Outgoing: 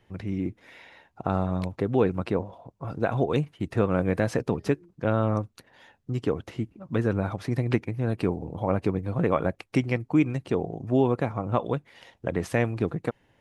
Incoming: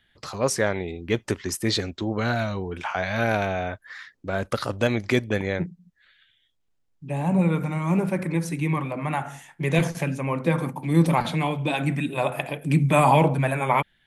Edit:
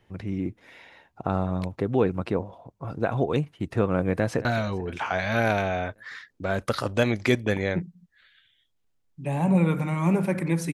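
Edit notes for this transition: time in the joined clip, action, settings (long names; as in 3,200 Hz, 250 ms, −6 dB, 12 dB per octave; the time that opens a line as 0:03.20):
outgoing
0:04.19–0:04.45: delay throw 220 ms, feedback 70%, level −17 dB
0:04.45: continue with incoming from 0:02.29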